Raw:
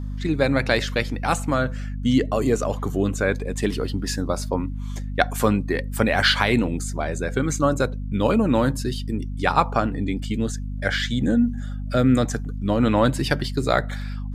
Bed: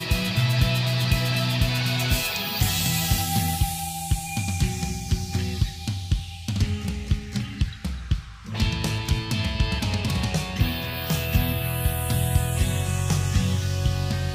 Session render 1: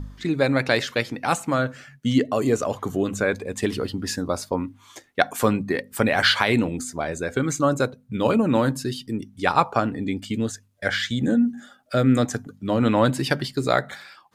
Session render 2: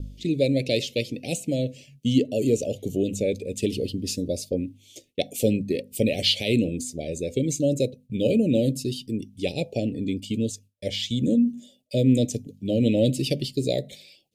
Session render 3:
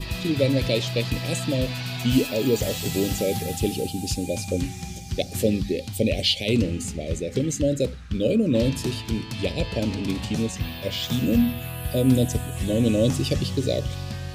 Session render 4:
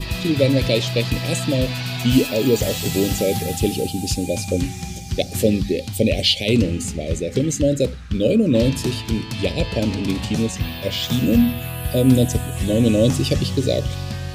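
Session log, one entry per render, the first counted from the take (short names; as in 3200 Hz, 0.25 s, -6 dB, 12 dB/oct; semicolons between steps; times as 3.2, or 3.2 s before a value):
de-hum 50 Hz, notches 5
gate with hold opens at -45 dBFS; elliptic band-stop 560–2600 Hz, stop band 50 dB
add bed -6.5 dB
gain +4.5 dB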